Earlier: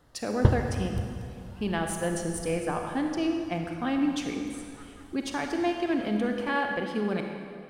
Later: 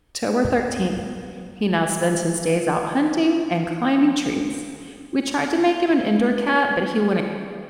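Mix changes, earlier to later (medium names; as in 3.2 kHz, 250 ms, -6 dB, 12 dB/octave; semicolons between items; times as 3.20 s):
speech +9.0 dB; background -8.0 dB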